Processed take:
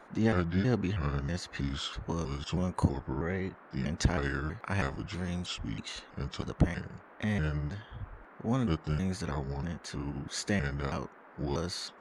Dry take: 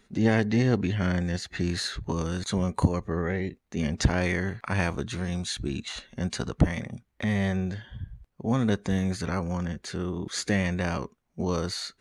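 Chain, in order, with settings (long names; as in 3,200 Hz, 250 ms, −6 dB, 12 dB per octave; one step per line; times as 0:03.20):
pitch shifter gated in a rhythm −4 semitones, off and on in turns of 321 ms
noise in a band 200–1,600 Hz −50 dBFS
level −4.5 dB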